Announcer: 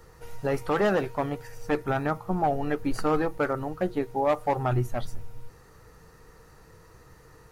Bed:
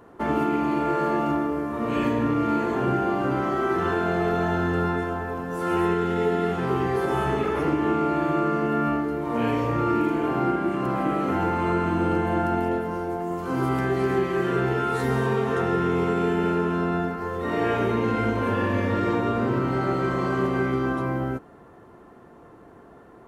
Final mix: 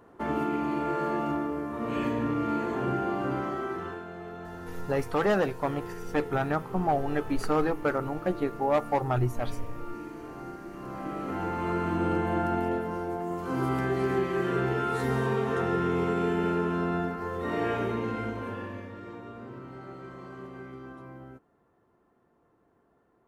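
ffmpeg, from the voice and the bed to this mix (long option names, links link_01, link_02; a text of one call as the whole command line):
ffmpeg -i stem1.wav -i stem2.wav -filter_complex "[0:a]adelay=4450,volume=-1dB[link_01];[1:a]volume=8dB,afade=type=out:start_time=3.33:duration=0.73:silence=0.251189,afade=type=in:start_time=10.68:duration=1.38:silence=0.211349,afade=type=out:start_time=17.45:duration=1.47:silence=0.177828[link_02];[link_01][link_02]amix=inputs=2:normalize=0" out.wav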